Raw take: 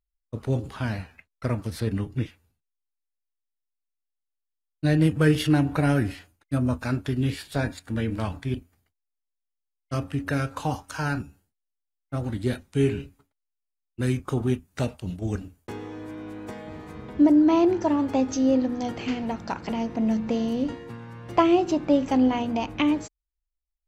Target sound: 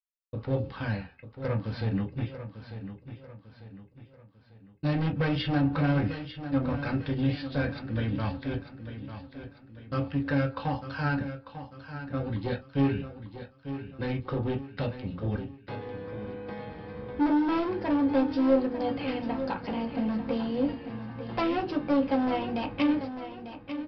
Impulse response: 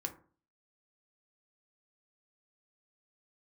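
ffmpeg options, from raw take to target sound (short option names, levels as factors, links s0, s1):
-filter_complex "[0:a]agate=range=0.0224:threshold=0.00631:ratio=3:detection=peak,aresample=11025,asoftclip=type=hard:threshold=0.0944,aresample=44100,aecho=1:1:896|1792|2688|3584:0.282|0.121|0.0521|0.0224[s0];[1:a]atrim=start_sample=2205,atrim=end_sample=3528,asetrate=70560,aresample=44100[s1];[s0][s1]afir=irnorm=-1:irlink=0,volume=1.26"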